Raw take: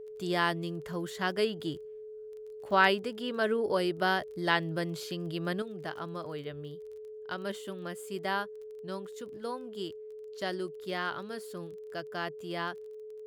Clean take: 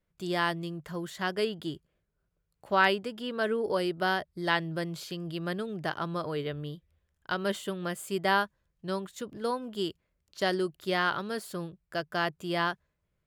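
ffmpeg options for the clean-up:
-af "adeclick=t=4,bandreject=f=430:w=30,asetnsamples=n=441:p=0,asendcmd='5.62 volume volume 6.5dB',volume=1"

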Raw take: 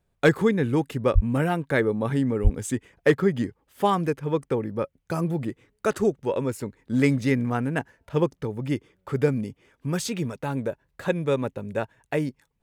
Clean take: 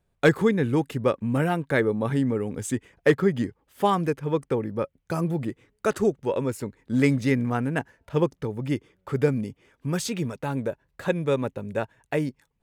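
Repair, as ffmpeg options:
-filter_complex "[0:a]asplit=3[s0][s1][s2];[s0]afade=t=out:st=1.14:d=0.02[s3];[s1]highpass=f=140:w=0.5412,highpass=f=140:w=1.3066,afade=t=in:st=1.14:d=0.02,afade=t=out:st=1.26:d=0.02[s4];[s2]afade=t=in:st=1.26:d=0.02[s5];[s3][s4][s5]amix=inputs=3:normalize=0,asplit=3[s6][s7][s8];[s6]afade=t=out:st=2.43:d=0.02[s9];[s7]highpass=f=140:w=0.5412,highpass=f=140:w=1.3066,afade=t=in:st=2.43:d=0.02,afade=t=out:st=2.55:d=0.02[s10];[s8]afade=t=in:st=2.55:d=0.02[s11];[s9][s10][s11]amix=inputs=3:normalize=0"

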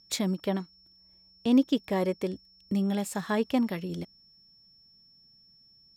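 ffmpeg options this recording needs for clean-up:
-af "bandreject=f=5400:w=30"

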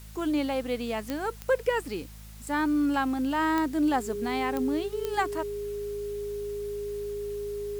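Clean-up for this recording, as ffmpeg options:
-af "adeclick=t=4,bandreject=f=53.3:t=h:w=4,bandreject=f=106.6:t=h:w=4,bandreject=f=159.9:t=h:w=4,bandreject=f=213.2:t=h:w=4,bandreject=f=410:w=30,afwtdn=0.0022"

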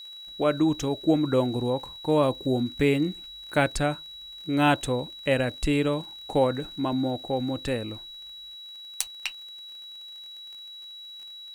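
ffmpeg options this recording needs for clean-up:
-af "adeclick=t=4,bandreject=f=3900:w=30,agate=range=0.0891:threshold=0.0178"

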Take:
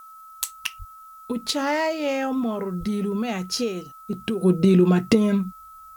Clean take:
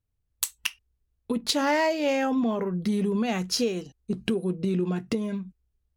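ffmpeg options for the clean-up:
-filter_complex "[0:a]bandreject=f=1300:w=30,asplit=3[s0][s1][s2];[s0]afade=t=out:st=0.78:d=0.02[s3];[s1]highpass=f=140:w=0.5412,highpass=f=140:w=1.3066,afade=t=in:st=0.78:d=0.02,afade=t=out:st=0.9:d=0.02[s4];[s2]afade=t=in:st=0.9:d=0.02[s5];[s3][s4][s5]amix=inputs=3:normalize=0,asplit=3[s6][s7][s8];[s6]afade=t=out:st=2.79:d=0.02[s9];[s7]highpass=f=140:w=0.5412,highpass=f=140:w=1.3066,afade=t=in:st=2.79:d=0.02,afade=t=out:st=2.91:d=0.02[s10];[s8]afade=t=in:st=2.91:d=0.02[s11];[s9][s10][s11]amix=inputs=3:normalize=0,agate=range=0.0891:threshold=0.0141,asetnsamples=n=441:p=0,asendcmd='4.41 volume volume -10dB',volume=1"

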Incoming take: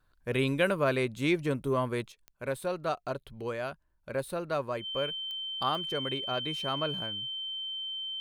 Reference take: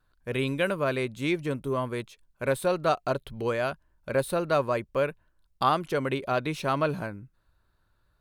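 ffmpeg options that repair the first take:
-af "adeclick=t=4,bandreject=f=3100:w=30,asetnsamples=n=441:p=0,asendcmd='2.12 volume volume 7dB',volume=1"

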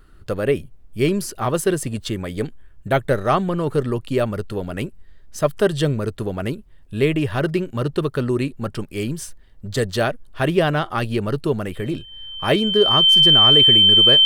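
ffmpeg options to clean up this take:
-af "bandreject=f=3100:w=30"

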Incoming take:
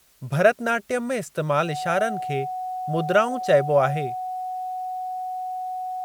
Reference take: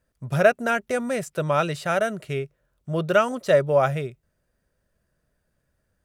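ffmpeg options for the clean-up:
-af "bandreject=f=740:w=30,agate=range=0.0891:threshold=0.0562"

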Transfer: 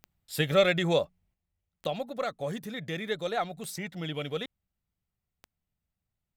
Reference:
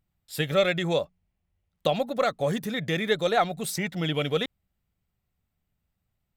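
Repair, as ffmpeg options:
-af "adeclick=t=4,asetnsamples=n=441:p=0,asendcmd='1.34 volume volume 7.5dB',volume=1"

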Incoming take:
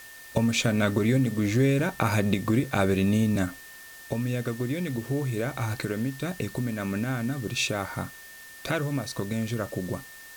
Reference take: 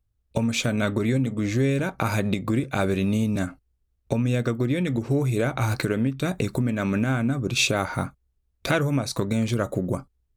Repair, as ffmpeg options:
-af "bandreject=f=1800:w=30,afwtdn=0.004,asetnsamples=n=441:p=0,asendcmd='3.64 volume volume 5.5dB',volume=1"

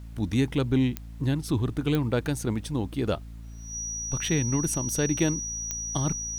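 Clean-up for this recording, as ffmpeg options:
-af "adeclick=t=4,bandreject=f=56:t=h:w=4,bandreject=f=112:t=h:w=4,bandreject=f=168:t=h:w=4,bandreject=f=224:t=h:w=4,bandreject=f=280:t=h:w=4,bandreject=f=5800:w=30,agate=range=0.0891:threshold=0.0224"

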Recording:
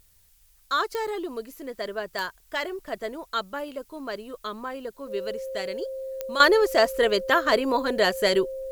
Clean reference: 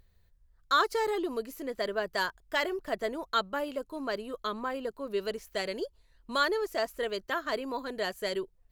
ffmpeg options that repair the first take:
-af "adeclick=t=4,bandreject=f=530:w=30,agate=range=0.0891:threshold=0.00316,asetnsamples=n=441:p=0,asendcmd='6.4 volume volume -11dB',volume=1"

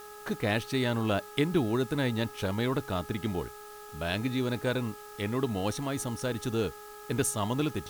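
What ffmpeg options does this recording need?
-af "bandreject=f=417.2:t=h:w=4,bandreject=f=834.4:t=h:w=4,bandreject=f=1251.6:t=h:w=4,bandreject=f=1668.8:t=h:w=4,bandreject=f=1300:w=30,afwtdn=0.0022"

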